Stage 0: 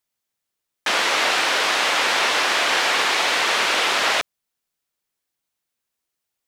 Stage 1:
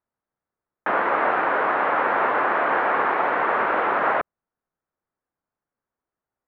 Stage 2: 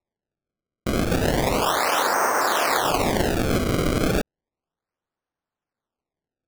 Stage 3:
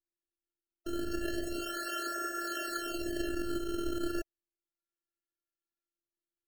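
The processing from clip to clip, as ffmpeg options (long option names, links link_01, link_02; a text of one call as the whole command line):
ffmpeg -i in.wav -af "lowpass=frequency=1500:width=0.5412,lowpass=frequency=1500:width=1.3066,volume=3dB" out.wav
ffmpeg -i in.wav -af "acrusher=samples=28:mix=1:aa=0.000001:lfo=1:lforange=44.8:lforate=0.33" out.wav
ffmpeg -i in.wav -af "afftfilt=real='hypot(re,im)*cos(PI*b)':imag='0':win_size=512:overlap=0.75,afftfilt=real='re*eq(mod(floor(b*sr/1024/650),2),0)':imag='im*eq(mod(floor(b*sr/1024/650),2),0)':win_size=1024:overlap=0.75,volume=-8dB" out.wav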